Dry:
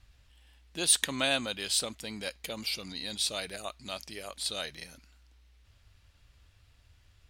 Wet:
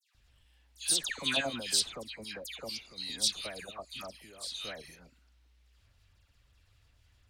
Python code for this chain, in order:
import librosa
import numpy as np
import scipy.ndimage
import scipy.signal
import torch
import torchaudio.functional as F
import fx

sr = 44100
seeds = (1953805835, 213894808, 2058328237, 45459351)

y = fx.dynamic_eq(x, sr, hz=5500.0, q=1.3, threshold_db=-45.0, ratio=4.0, max_db=6)
y = fx.cheby_harmonics(y, sr, harmonics=(8,), levels_db=(-37,), full_scale_db=-8.0)
y = fx.level_steps(y, sr, step_db=13)
y = fx.dispersion(y, sr, late='lows', ms=148.0, hz=1900.0)